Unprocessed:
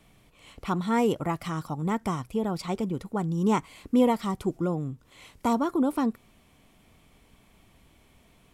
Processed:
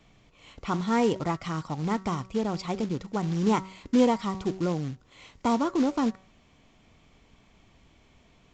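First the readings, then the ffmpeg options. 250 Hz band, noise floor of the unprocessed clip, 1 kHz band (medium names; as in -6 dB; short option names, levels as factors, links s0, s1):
0.0 dB, -61 dBFS, 0.0 dB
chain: -af "bandreject=f=189.2:t=h:w=4,bandreject=f=378.4:t=h:w=4,bandreject=f=567.6:t=h:w=4,bandreject=f=756.8:t=h:w=4,bandreject=f=946:t=h:w=4,bandreject=f=1135.2:t=h:w=4,bandreject=f=1324.4:t=h:w=4,bandreject=f=1513.6:t=h:w=4,bandreject=f=1702.8:t=h:w=4,bandreject=f=1892:t=h:w=4,bandreject=f=2081.2:t=h:w=4,acrusher=bits=4:mode=log:mix=0:aa=0.000001,aresample=16000,aresample=44100"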